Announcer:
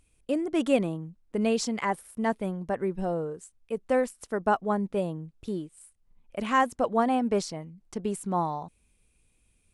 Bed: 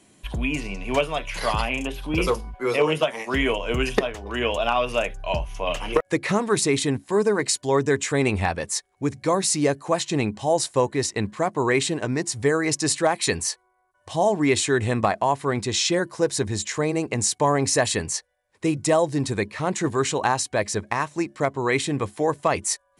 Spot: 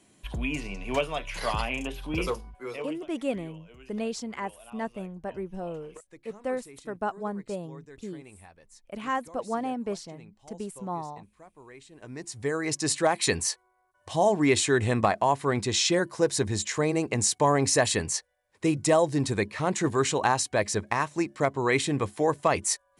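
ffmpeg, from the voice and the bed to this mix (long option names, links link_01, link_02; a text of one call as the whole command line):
ffmpeg -i stem1.wav -i stem2.wav -filter_complex "[0:a]adelay=2550,volume=-6dB[link_01];[1:a]volume=21dB,afade=type=out:start_time=2.04:duration=0.99:silence=0.0707946,afade=type=in:start_time=11.91:duration=1.28:silence=0.0501187[link_02];[link_01][link_02]amix=inputs=2:normalize=0" out.wav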